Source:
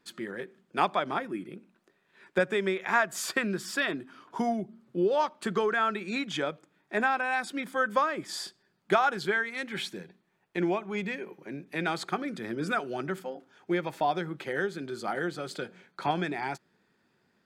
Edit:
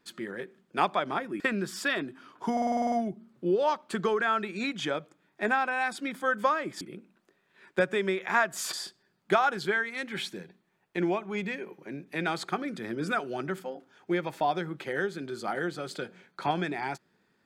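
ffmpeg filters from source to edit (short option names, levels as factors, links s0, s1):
-filter_complex "[0:a]asplit=12[s0][s1][s2][s3][s4][s5][s6][s7][s8][s9][s10][s11];[s0]atrim=end=1.402[s12];[s1]atrim=start=3.318:end=4.492[s13];[s2]atrim=start=4.438:end=4.492[s14];[s3]atrim=start=4.438:end=4.492[s15];[s4]atrim=start=4.438:end=4.492[s16];[s5]atrim=start=4.438:end=4.492[s17];[s6]atrim=start=4.438:end=4.492[s18];[s7]atrim=start=4.438:end=4.492[s19];[s8]atrim=start=4.438:end=4.492[s20];[s9]atrim=start=4.438:end=8.332[s21];[s10]atrim=start=1.398:end=3.322[s22];[s11]atrim=start=8.328[s23];[s12][s13]acrossfade=d=0.004:c1=hsin:c2=hsin[s24];[s24][s14]acrossfade=d=0.004:c1=hsin:c2=hsin[s25];[s25][s15]acrossfade=d=0.004:c1=hsin:c2=hsin[s26];[s26][s16]acrossfade=d=0.004:c1=hsin:c2=hsin[s27];[s27][s17]acrossfade=d=0.004:c1=hsin:c2=hsin[s28];[s28][s18]acrossfade=d=0.004:c1=hsin:c2=hsin[s29];[s29][s19]acrossfade=d=0.004:c1=hsin:c2=hsin[s30];[s30][s20]acrossfade=d=0.004:c1=hsin:c2=hsin[s31];[s31][s21]acrossfade=d=0.004:c1=hsin:c2=hsin[s32];[s32][s22]acrossfade=d=0.004:c1=hsin:c2=hsin[s33];[s33][s23]acrossfade=d=0.004:c1=hsin:c2=hsin"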